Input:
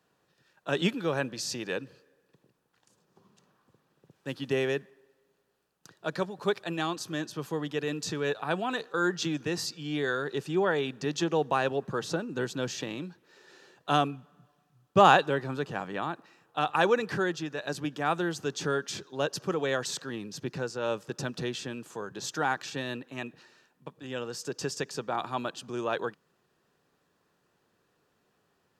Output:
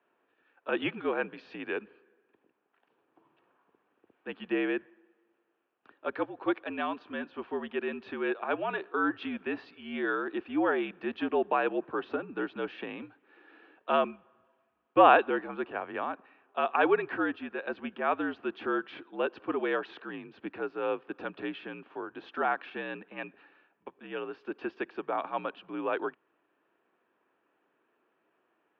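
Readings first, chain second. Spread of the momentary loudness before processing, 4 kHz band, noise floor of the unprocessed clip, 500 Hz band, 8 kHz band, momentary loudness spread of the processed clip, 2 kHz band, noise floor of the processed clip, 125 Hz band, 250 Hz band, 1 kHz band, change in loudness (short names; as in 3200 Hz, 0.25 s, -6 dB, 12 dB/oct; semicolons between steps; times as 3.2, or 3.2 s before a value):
11 LU, -9.5 dB, -73 dBFS, -1.0 dB, under -40 dB, 13 LU, -1.0 dB, -76 dBFS, -16.0 dB, -0.5 dB, -0.5 dB, -1.0 dB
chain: mistuned SSB -63 Hz 330–2900 Hz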